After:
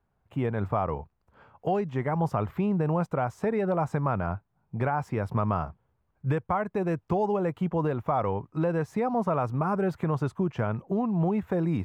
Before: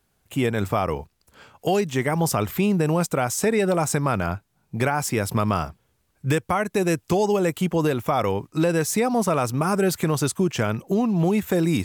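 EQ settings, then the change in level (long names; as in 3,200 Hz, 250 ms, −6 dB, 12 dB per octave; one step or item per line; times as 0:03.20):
drawn EQ curve 140 Hz 0 dB, 310 Hz −5 dB, 970 Hz +1 dB, 8,200 Hz −28 dB
−3.0 dB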